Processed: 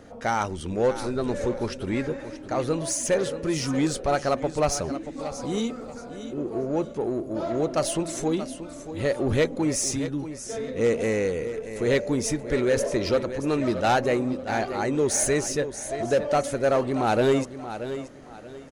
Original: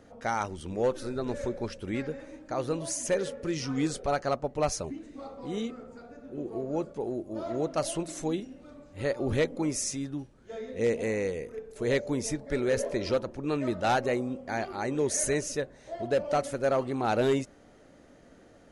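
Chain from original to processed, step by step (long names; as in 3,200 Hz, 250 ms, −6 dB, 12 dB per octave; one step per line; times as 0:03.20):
0:05.19–0:05.98: bass and treble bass +1 dB, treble +8 dB
repeating echo 630 ms, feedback 27%, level −13.5 dB
in parallel at −4 dB: soft clipping −34 dBFS, distortion −6 dB
on the sum: level +3 dB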